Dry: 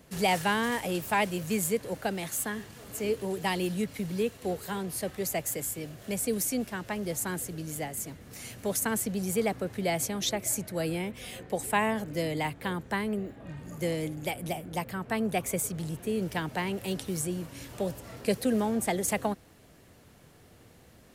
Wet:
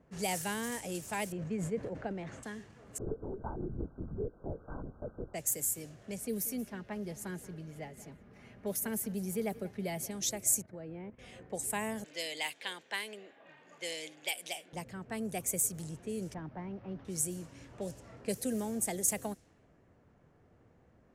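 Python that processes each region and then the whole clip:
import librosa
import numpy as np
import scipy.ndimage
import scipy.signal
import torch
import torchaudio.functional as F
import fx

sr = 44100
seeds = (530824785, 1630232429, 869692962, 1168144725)

y = fx.chain(x, sr, fx.lowpass(hz=1700.0, slope=12),
    fx.transient(attack_db=2, sustain_db=11), at=(1.32, 2.43))
y = fx.chain(y, sr, fx.lpc_vocoder(seeds[0], excitation='whisper', order=10),
    fx.brickwall_lowpass(high_hz=1600.0), at=(2.98, 5.34))
y = fx.chain(y, sr, fx.peak_eq(hz=7600.0, db=-14.0, octaves=1.0),
    fx.comb(ms=4.9, depth=0.39),
    fx.echo_single(ms=181, db=-18.5), at=(6.17, 10.11))
y = fx.chain(y, sr, fx.lowpass(hz=1600.0, slope=12),
    fx.level_steps(step_db=12), at=(10.62, 11.19))
y = fx.chain(y, sr, fx.highpass(hz=530.0, slope=12),
    fx.peak_eq(hz=3300.0, db=14.0, octaves=1.6),
    fx.notch(hz=1300.0, q=12.0), at=(12.04, 14.73))
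y = fx.chain(y, sr, fx.delta_mod(bps=32000, step_db=-41.0),
    fx.lowpass(hz=1300.0, slope=12),
    fx.peak_eq(hz=450.0, db=-7.0, octaves=0.46), at=(16.34, 17.05))
y = fx.high_shelf_res(y, sr, hz=5100.0, db=8.0, q=1.5)
y = fx.env_lowpass(y, sr, base_hz=1500.0, full_db=-24.0)
y = fx.dynamic_eq(y, sr, hz=1100.0, q=1.3, threshold_db=-45.0, ratio=4.0, max_db=-5)
y = F.gain(torch.from_numpy(y), -7.5).numpy()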